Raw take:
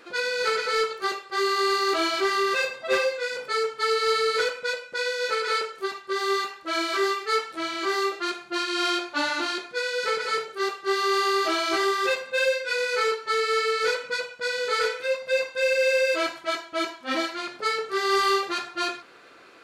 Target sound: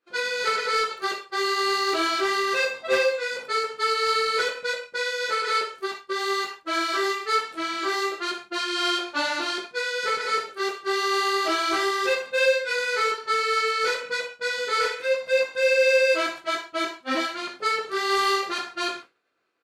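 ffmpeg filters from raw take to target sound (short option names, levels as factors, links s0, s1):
-af "aecho=1:1:19|62:0.398|0.266,agate=range=0.0224:threshold=0.02:ratio=3:detection=peak"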